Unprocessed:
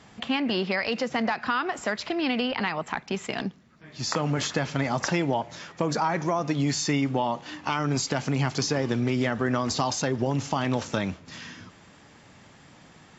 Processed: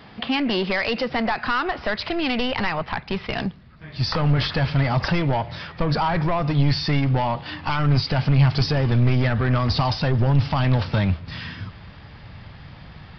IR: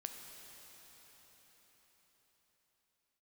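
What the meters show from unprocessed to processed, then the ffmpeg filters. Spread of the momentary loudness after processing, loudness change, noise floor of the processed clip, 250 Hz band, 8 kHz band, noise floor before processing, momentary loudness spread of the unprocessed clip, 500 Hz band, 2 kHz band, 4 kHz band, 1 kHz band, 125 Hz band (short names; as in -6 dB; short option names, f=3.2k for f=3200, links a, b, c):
10 LU, +5.0 dB, -44 dBFS, +3.0 dB, n/a, -53 dBFS, 7 LU, +2.0 dB, +3.5 dB, +4.5 dB, +3.5 dB, +11.0 dB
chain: -af "aresample=11025,asoftclip=type=tanh:threshold=-22.5dB,aresample=44100,asubboost=boost=8:cutoff=97,volume=7dB"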